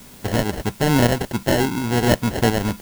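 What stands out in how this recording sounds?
aliases and images of a low sample rate 1200 Hz, jitter 0%; tremolo saw up 2.8 Hz, depth 45%; a quantiser's noise floor 8-bit, dither triangular

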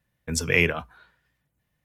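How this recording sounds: noise floor -77 dBFS; spectral tilt -3.5 dB/oct

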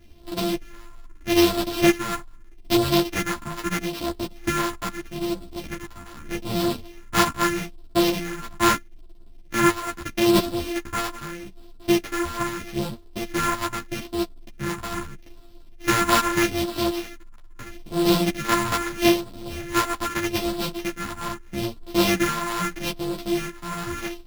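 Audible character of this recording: a buzz of ramps at a fixed pitch in blocks of 128 samples; phasing stages 4, 0.79 Hz, lowest notch 470–2000 Hz; aliases and images of a low sample rate 8500 Hz, jitter 0%; a shimmering, thickened sound

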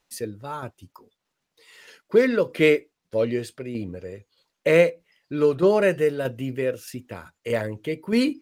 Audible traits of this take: tremolo saw down 1.6 Hz, depth 45%

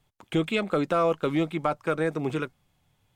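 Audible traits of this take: noise floor -71 dBFS; spectral tilt -5.0 dB/oct

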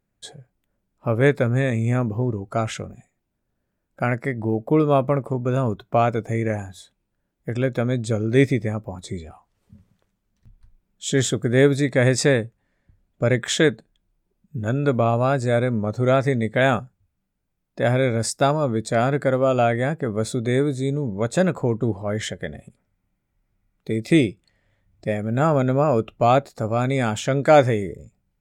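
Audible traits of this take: noise floor -76 dBFS; spectral tilt -6.0 dB/oct

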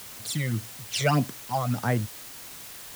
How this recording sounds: phasing stages 12, 1.7 Hz, lowest notch 270–4800 Hz; a quantiser's noise floor 8-bit, dither triangular

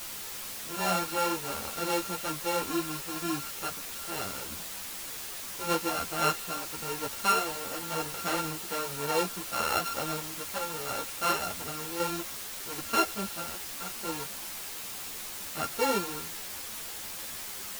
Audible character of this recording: a buzz of ramps at a fixed pitch in blocks of 32 samples; random-step tremolo; a quantiser's noise floor 6-bit, dither triangular; a shimmering, thickened sound

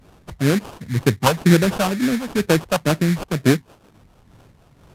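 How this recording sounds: phasing stages 4, 2.1 Hz, lowest notch 330–1800 Hz; aliases and images of a low sample rate 2000 Hz, jitter 20%; Vorbis

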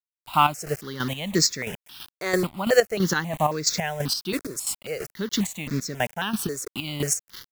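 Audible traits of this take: a quantiser's noise floor 6-bit, dither none; chopped level 3 Hz, depth 65%, duty 40%; notches that jump at a steady rate 3.7 Hz 810–3000 Hz

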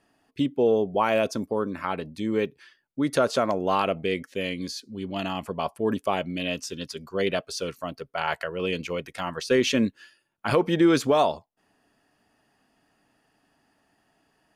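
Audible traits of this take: noise floor -70 dBFS; spectral tilt -4.0 dB/oct

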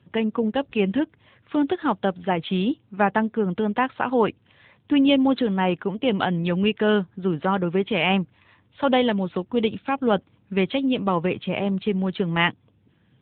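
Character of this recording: a quantiser's noise floor 12-bit, dither none; AMR-NB

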